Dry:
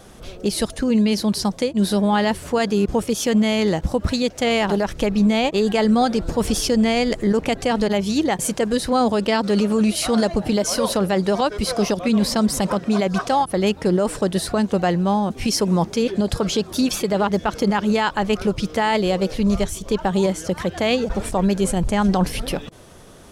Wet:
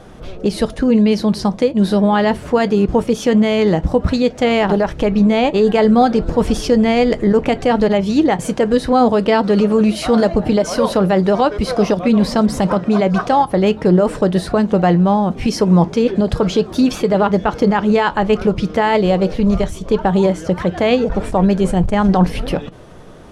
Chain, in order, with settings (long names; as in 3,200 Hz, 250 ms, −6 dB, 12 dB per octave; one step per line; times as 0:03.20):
low-pass filter 1,800 Hz 6 dB per octave
convolution reverb RT60 0.20 s, pre-delay 6 ms, DRR 13.5 dB
saturating transformer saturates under 67 Hz
level +6 dB